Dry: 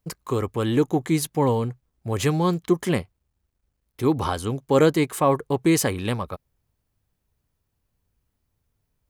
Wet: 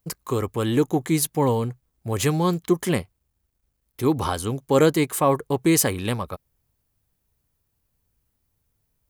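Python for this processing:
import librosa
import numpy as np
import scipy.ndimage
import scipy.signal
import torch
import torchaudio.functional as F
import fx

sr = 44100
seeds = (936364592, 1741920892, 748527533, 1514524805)

y = fx.high_shelf(x, sr, hz=8100.0, db=9.0)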